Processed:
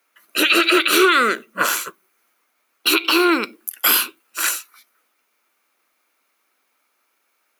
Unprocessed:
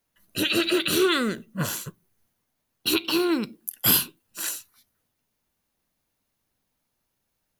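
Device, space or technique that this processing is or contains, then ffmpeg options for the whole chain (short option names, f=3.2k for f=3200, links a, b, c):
laptop speaker: -af "highpass=f=310:w=0.5412,highpass=f=310:w=1.3066,equalizer=f=1.3k:t=o:w=0.52:g=11,equalizer=f=2.3k:t=o:w=0.35:g=10,alimiter=limit=-12.5dB:level=0:latency=1:release=90,volume=8dB"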